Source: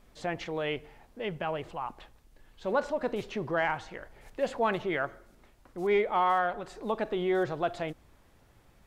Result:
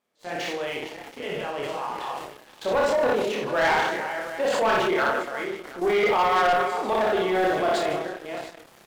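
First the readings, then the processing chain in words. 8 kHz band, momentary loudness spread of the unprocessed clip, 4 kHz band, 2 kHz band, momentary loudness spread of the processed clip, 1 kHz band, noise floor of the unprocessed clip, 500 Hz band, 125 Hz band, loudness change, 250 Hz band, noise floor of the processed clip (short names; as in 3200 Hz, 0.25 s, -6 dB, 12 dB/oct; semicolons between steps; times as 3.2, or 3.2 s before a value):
n/a, 13 LU, +11.0 dB, +9.0 dB, 14 LU, +7.5 dB, -61 dBFS, +7.5 dB, +0.5 dB, +7.0 dB, +4.5 dB, -53 dBFS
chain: reverse delay 0.323 s, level -10 dB; recorder AGC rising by 7.1 dB/s; HPF 290 Hz 12 dB/oct; level quantiser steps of 15 dB; tapped delay 59/153/310/719 ms -3.5/-13.5/-19/-18.5 dB; transient shaper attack -5 dB, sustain +7 dB; doubler 28 ms -3 dB; sample leveller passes 3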